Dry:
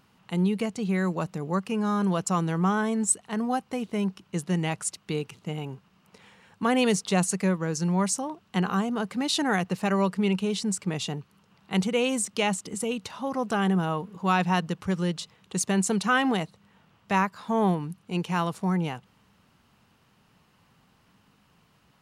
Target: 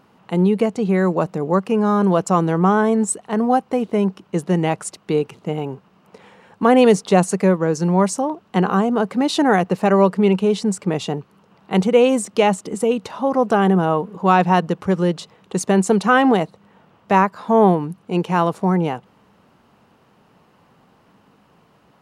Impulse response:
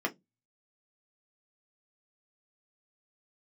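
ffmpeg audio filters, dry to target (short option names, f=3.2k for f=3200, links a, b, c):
-af "equalizer=f=500:w=0.38:g=13"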